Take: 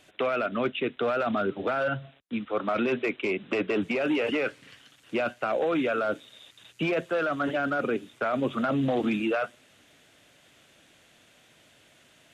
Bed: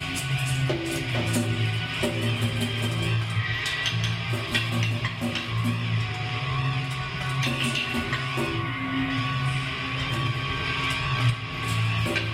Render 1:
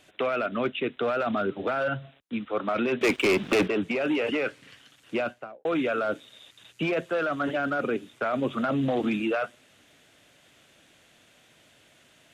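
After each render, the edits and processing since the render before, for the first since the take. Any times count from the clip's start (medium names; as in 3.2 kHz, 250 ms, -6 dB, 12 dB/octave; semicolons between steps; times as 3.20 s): 3.01–3.68 s: waveshaping leveller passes 3; 5.16–5.65 s: studio fade out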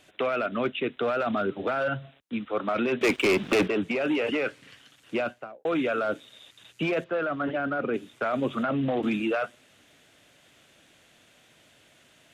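7.04–7.94 s: distance through air 270 m; 8.63–9.03 s: Chebyshev low-pass 2.8 kHz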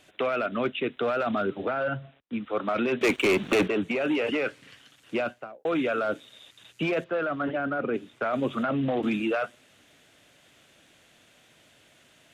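1.65–2.44 s: distance through air 220 m; 3.08–4.14 s: band-stop 5 kHz, Q 6.5; 7.48–8.33 s: treble shelf 5 kHz -7.5 dB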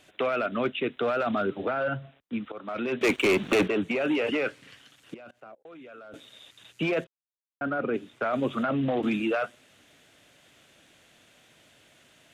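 2.52–3.10 s: fade in, from -15.5 dB; 5.14–6.14 s: level held to a coarse grid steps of 23 dB; 7.07–7.61 s: mute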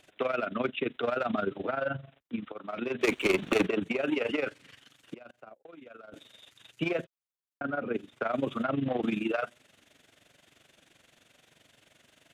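AM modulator 23 Hz, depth 60%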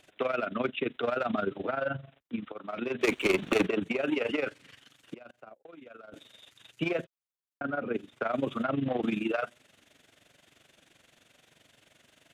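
no audible change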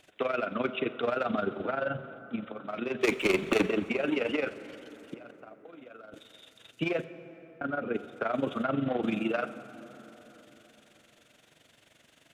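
plate-style reverb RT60 4 s, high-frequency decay 0.45×, DRR 12 dB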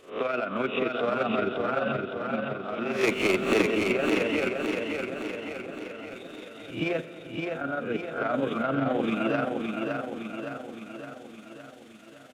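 reverse spectral sustain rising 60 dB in 0.38 s; on a send: feedback delay 564 ms, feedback 57%, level -4 dB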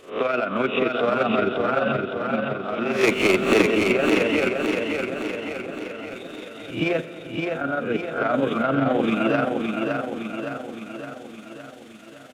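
trim +5.5 dB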